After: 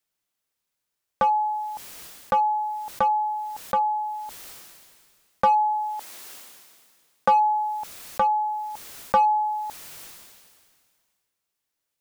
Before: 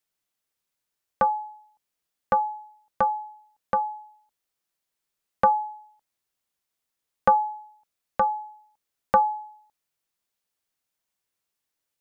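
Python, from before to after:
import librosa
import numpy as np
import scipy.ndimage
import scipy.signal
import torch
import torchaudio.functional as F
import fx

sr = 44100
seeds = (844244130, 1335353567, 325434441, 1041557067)

p1 = fx.highpass(x, sr, hz=fx.line((5.73, 330.0), (7.3, 120.0)), slope=12, at=(5.73, 7.3), fade=0.02)
p2 = np.clip(10.0 ** (21.5 / 20.0) * p1, -1.0, 1.0) / 10.0 ** (21.5 / 20.0)
p3 = p1 + (p2 * 10.0 ** (-4.0 / 20.0))
p4 = fx.sustainer(p3, sr, db_per_s=30.0)
y = p4 * 10.0 ** (-3.0 / 20.0)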